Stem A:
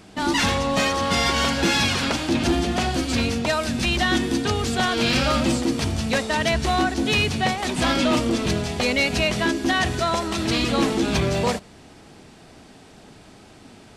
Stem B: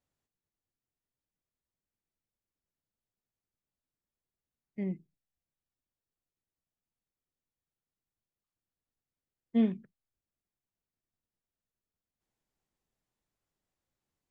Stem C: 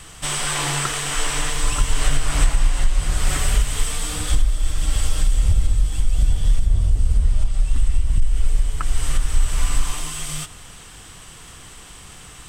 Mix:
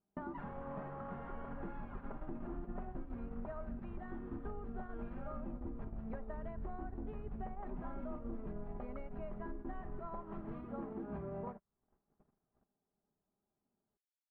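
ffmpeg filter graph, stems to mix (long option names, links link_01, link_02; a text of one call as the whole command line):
ffmpeg -i stem1.wav -i stem2.wav -i stem3.wav -filter_complex "[0:a]acompressor=threshold=-35dB:ratio=2.5,aecho=1:1:5:0.41,volume=-2.5dB[link_01];[2:a]acompressor=threshold=-22dB:ratio=6,adelay=150,volume=-10dB[link_02];[link_01][link_02]amix=inputs=2:normalize=0,acompressor=threshold=-38dB:ratio=8,volume=0dB,agate=range=-39dB:threshold=-41dB:ratio=16:detection=peak,lowpass=frequency=1300:width=0.5412,lowpass=frequency=1300:width=1.3066" out.wav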